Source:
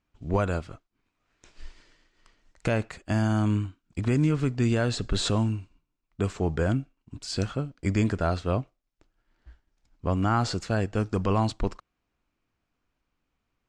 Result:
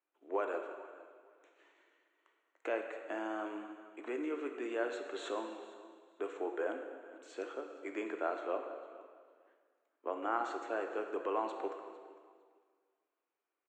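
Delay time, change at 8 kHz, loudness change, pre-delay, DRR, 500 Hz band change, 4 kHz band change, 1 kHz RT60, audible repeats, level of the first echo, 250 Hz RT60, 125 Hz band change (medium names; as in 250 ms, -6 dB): 454 ms, -20.0 dB, -12.5 dB, 6 ms, 4.5 dB, -6.5 dB, -18.0 dB, 1.9 s, 2, -19.5 dB, 1.9 s, under -40 dB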